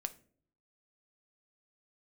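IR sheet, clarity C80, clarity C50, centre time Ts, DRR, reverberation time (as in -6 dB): 22.5 dB, 17.5 dB, 3 ms, 9.0 dB, no single decay rate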